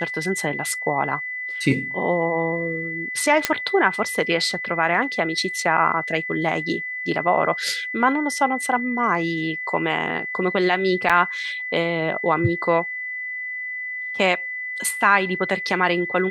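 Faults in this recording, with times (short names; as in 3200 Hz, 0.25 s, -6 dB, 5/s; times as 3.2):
tone 2000 Hz -27 dBFS
3.45 pop -2 dBFS
11.09–11.1 gap 6.5 ms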